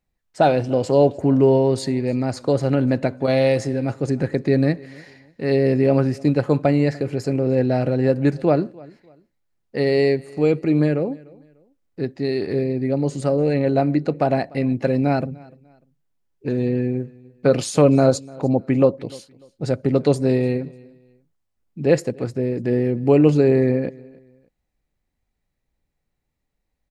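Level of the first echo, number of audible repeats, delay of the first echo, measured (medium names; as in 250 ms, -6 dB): -23.5 dB, 2, 297 ms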